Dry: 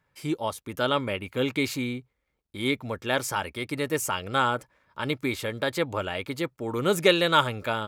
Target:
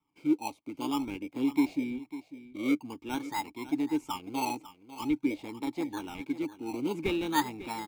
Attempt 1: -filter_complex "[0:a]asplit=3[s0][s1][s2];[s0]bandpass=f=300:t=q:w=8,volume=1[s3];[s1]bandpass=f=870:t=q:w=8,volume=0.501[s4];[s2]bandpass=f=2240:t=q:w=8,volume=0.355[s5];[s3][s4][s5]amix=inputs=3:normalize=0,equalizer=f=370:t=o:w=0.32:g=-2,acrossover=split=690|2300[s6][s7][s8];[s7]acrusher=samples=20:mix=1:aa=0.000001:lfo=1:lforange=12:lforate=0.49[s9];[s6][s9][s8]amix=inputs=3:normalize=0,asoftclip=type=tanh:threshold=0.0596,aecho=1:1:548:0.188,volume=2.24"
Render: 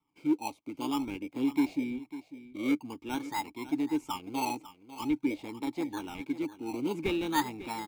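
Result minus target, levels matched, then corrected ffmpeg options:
saturation: distortion +11 dB
-filter_complex "[0:a]asplit=3[s0][s1][s2];[s0]bandpass=f=300:t=q:w=8,volume=1[s3];[s1]bandpass=f=870:t=q:w=8,volume=0.501[s4];[s2]bandpass=f=2240:t=q:w=8,volume=0.355[s5];[s3][s4][s5]amix=inputs=3:normalize=0,equalizer=f=370:t=o:w=0.32:g=-2,acrossover=split=690|2300[s6][s7][s8];[s7]acrusher=samples=20:mix=1:aa=0.000001:lfo=1:lforange=12:lforate=0.49[s9];[s6][s9][s8]amix=inputs=3:normalize=0,asoftclip=type=tanh:threshold=0.126,aecho=1:1:548:0.188,volume=2.24"

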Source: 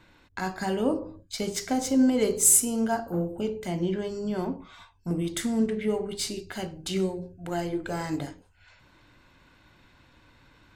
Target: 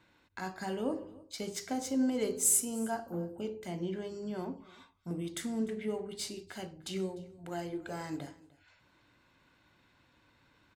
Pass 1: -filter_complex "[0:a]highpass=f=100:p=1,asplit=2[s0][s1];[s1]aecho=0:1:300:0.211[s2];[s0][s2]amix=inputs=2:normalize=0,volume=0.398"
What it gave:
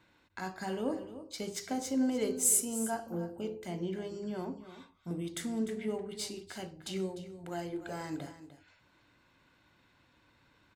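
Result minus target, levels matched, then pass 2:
echo-to-direct +8.5 dB
-filter_complex "[0:a]highpass=f=100:p=1,asplit=2[s0][s1];[s1]aecho=0:1:300:0.0794[s2];[s0][s2]amix=inputs=2:normalize=0,volume=0.398"

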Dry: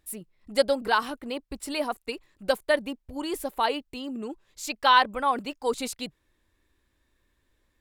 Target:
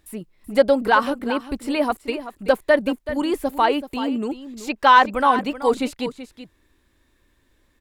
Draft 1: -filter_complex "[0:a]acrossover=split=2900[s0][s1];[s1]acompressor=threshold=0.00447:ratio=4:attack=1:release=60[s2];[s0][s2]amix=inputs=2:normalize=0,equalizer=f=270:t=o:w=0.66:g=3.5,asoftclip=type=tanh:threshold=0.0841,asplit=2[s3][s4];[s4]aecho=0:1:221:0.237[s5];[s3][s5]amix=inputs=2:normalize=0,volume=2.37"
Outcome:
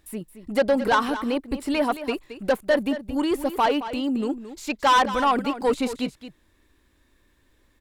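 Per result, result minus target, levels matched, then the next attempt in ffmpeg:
saturation: distortion +15 dB; echo 159 ms early
-filter_complex "[0:a]acrossover=split=2900[s0][s1];[s1]acompressor=threshold=0.00447:ratio=4:attack=1:release=60[s2];[s0][s2]amix=inputs=2:normalize=0,equalizer=f=270:t=o:w=0.66:g=3.5,asoftclip=type=tanh:threshold=0.335,asplit=2[s3][s4];[s4]aecho=0:1:221:0.237[s5];[s3][s5]amix=inputs=2:normalize=0,volume=2.37"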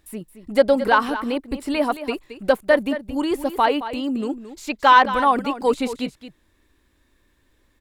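echo 159 ms early
-filter_complex "[0:a]acrossover=split=2900[s0][s1];[s1]acompressor=threshold=0.00447:ratio=4:attack=1:release=60[s2];[s0][s2]amix=inputs=2:normalize=0,equalizer=f=270:t=o:w=0.66:g=3.5,asoftclip=type=tanh:threshold=0.335,asplit=2[s3][s4];[s4]aecho=0:1:380:0.237[s5];[s3][s5]amix=inputs=2:normalize=0,volume=2.37"

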